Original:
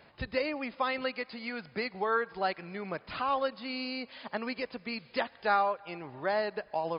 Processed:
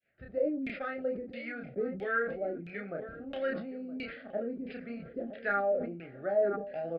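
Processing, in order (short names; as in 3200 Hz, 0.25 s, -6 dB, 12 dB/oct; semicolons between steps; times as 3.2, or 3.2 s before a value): opening faded in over 0.54 s; in parallel at -7 dB: one-sided clip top -28 dBFS; on the sum: LFO low-pass saw down 1.5 Hz 210–3000 Hz; Chebyshev band-stop 650–1500 Hz, order 2; doubler 30 ms -5 dB; on a send: darkening echo 0.969 s, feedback 52%, low-pass 830 Hz, level -14.5 dB; on the sum: sustainer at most 67 dB/s; gain -7.5 dB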